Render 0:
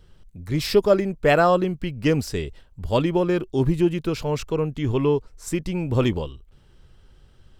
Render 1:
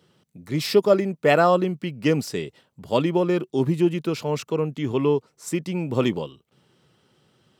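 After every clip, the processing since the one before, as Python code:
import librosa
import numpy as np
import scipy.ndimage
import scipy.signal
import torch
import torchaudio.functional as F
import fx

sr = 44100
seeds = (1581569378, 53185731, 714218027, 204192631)

y = scipy.signal.sosfilt(scipy.signal.butter(4, 140.0, 'highpass', fs=sr, output='sos'), x)
y = fx.notch(y, sr, hz=1600.0, q=16.0)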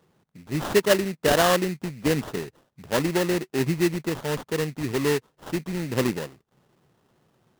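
y = fx.sample_hold(x, sr, seeds[0], rate_hz=2300.0, jitter_pct=20)
y = y * librosa.db_to_amplitude(-2.5)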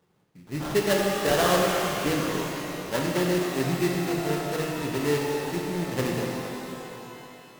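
y = fx.rev_shimmer(x, sr, seeds[1], rt60_s=3.2, semitones=12, shimmer_db=-8, drr_db=-2.0)
y = y * librosa.db_to_amplitude(-5.5)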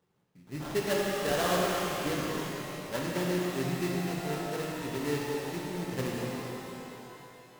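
y = fx.rev_gated(x, sr, seeds[2], gate_ms=370, shape='flat', drr_db=5.0)
y = y * librosa.db_to_amplitude(-7.0)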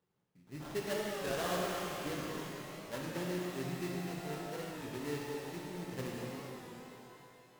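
y = fx.record_warp(x, sr, rpm=33.33, depth_cents=100.0)
y = y * librosa.db_to_amplitude(-7.5)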